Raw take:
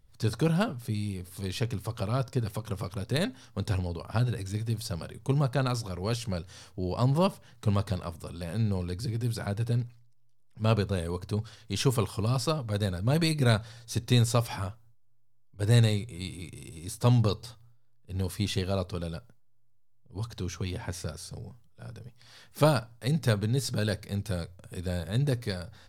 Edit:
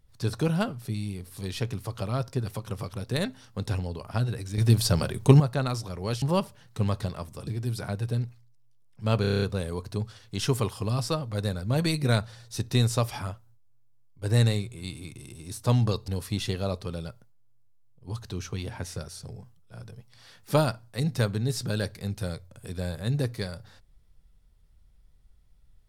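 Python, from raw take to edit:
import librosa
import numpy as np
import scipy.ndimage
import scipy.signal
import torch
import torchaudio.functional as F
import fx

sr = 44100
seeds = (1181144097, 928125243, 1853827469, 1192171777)

y = fx.edit(x, sr, fx.clip_gain(start_s=4.58, length_s=0.82, db=11.0),
    fx.cut(start_s=6.22, length_s=0.87),
    fx.cut(start_s=8.34, length_s=0.71),
    fx.stutter(start_s=10.79, slice_s=0.03, count=8),
    fx.cut(start_s=17.45, length_s=0.71), tone=tone)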